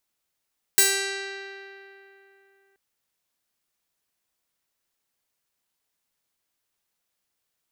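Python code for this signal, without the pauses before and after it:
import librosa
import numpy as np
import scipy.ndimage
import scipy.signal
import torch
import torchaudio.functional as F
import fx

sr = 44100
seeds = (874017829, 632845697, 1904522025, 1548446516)

y = fx.pluck(sr, length_s=1.98, note=67, decay_s=3.15, pick=0.32, brightness='bright')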